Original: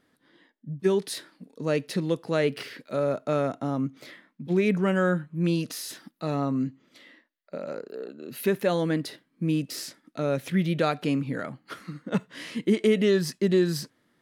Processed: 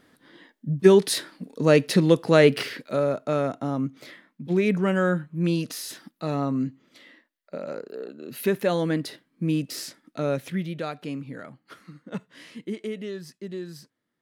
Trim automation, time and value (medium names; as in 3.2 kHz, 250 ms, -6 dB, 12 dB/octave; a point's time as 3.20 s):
2.57 s +8.5 dB
3.14 s +1 dB
10.30 s +1 dB
10.74 s -7 dB
12.39 s -7 dB
13.14 s -13 dB